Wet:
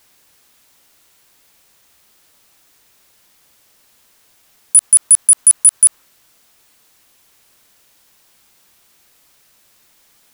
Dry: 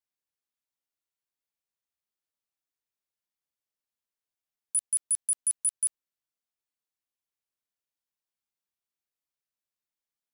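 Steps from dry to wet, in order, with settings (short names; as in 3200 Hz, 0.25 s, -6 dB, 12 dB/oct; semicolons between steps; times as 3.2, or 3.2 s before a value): in parallel at -1 dB: negative-ratio compressor -34 dBFS, ratio -1; on the sum: dynamic EQ 1200 Hz, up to +5 dB, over -59 dBFS, Q 1.2; maximiser +27.5 dB; gain -1 dB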